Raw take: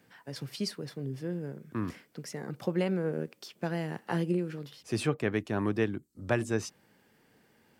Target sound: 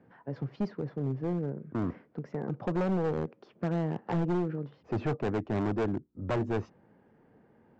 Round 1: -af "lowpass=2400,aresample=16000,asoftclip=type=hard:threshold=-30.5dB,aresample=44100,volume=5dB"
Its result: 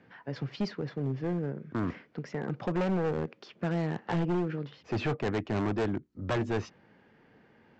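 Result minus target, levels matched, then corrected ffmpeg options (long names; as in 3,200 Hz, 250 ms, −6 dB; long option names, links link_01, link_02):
2,000 Hz band +4.5 dB
-af "lowpass=1000,aresample=16000,asoftclip=type=hard:threshold=-30.5dB,aresample=44100,volume=5dB"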